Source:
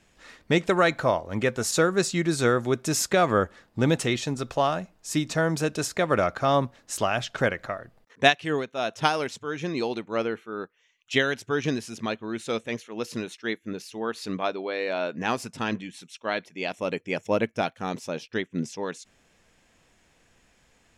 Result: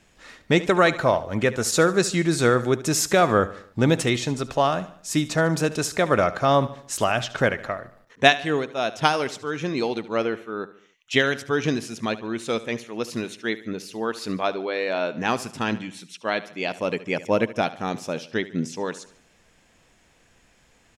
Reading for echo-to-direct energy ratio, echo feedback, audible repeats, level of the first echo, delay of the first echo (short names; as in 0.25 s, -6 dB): -15.5 dB, 48%, 3, -16.5 dB, 73 ms